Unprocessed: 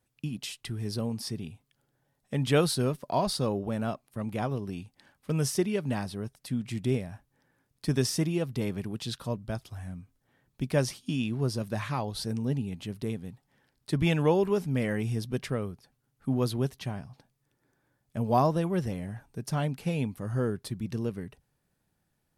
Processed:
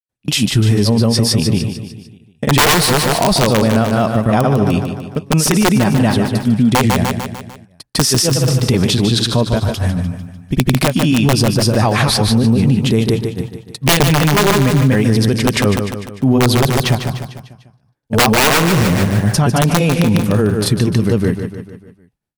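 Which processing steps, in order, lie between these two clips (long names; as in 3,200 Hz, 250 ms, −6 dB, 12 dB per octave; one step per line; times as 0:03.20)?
noise gate −54 dBFS, range −30 dB
granular cloud 216 ms, grains 8.4 per second, spray 150 ms, pitch spread up and down by 0 semitones
wrap-around overflow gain 20.5 dB
on a send: repeating echo 149 ms, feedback 50%, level −10 dB
on the sum: boost into a limiter +29 dB
level −4 dB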